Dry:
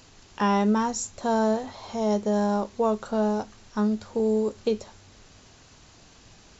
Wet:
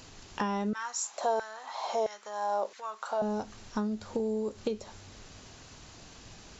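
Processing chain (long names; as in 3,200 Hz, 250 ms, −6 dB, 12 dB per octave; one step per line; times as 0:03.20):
downward compressor 6 to 1, threshold −31 dBFS, peak gain reduction 12.5 dB
0:00.73–0:03.22: auto-filter high-pass saw down 1.5 Hz 470–1,800 Hz
level +2 dB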